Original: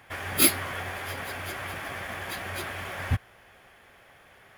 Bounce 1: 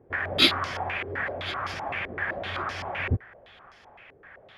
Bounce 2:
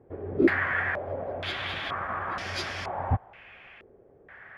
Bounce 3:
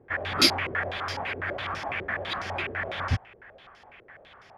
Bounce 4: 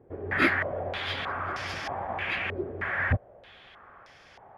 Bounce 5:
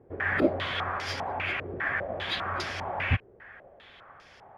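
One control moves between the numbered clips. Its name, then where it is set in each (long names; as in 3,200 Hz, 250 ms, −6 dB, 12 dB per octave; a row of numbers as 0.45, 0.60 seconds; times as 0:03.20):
low-pass on a step sequencer, speed: 7.8, 2.1, 12, 3.2, 5 Hertz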